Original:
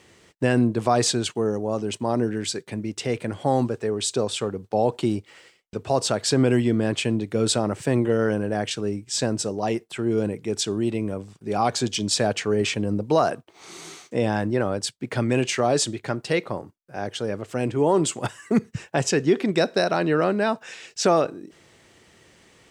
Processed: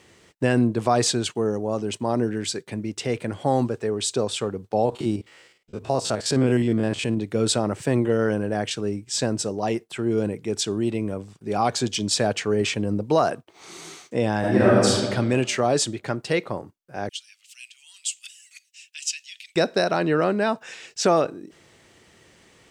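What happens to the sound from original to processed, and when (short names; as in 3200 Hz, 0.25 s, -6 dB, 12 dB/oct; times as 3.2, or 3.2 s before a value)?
4.85–7.18 stepped spectrum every 50 ms
14.39–14.91 reverb throw, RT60 1.5 s, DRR -7.5 dB
17.09–19.56 Chebyshev high-pass 2600 Hz, order 4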